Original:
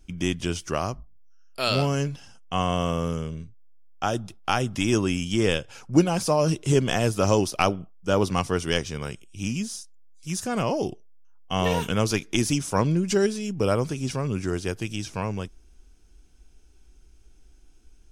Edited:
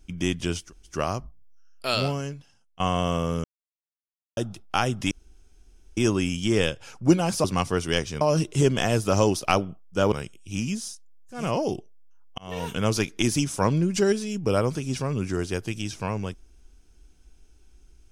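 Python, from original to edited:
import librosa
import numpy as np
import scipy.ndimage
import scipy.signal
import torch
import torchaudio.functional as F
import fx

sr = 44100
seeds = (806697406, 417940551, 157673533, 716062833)

y = fx.edit(x, sr, fx.insert_room_tone(at_s=0.65, length_s=0.26, crossfade_s=0.16),
    fx.fade_out_to(start_s=1.64, length_s=0.9, curve='qua', floor_db=-17.5),
    fx.silence(start_s=3.18, length_s=0.93),
    fx.insert_room_tone(at_s=4.85, length_s=0.86),
    fx.move(start_s=8.23, length_s=0.77, to_s=6.32),
    fx.cut(start_s=10.28, length_s=0.26, crossfade_s=0.24),
    fx.fade_in_span(start_s=11.52, length_s=0.51), tone=tone)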